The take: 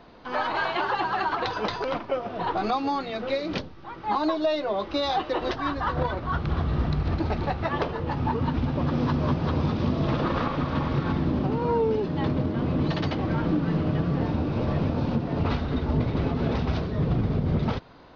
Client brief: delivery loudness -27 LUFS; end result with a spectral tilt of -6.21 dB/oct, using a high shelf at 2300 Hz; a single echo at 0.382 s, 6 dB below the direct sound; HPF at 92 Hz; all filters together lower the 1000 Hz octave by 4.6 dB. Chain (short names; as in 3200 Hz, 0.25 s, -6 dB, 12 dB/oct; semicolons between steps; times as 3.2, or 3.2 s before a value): HPF 92 Hz; bell 1000 Hz -4.5 dB; high shelf 2300 Hz -7 dB; echo 0.382 s -6 dB; gain +0.5 dB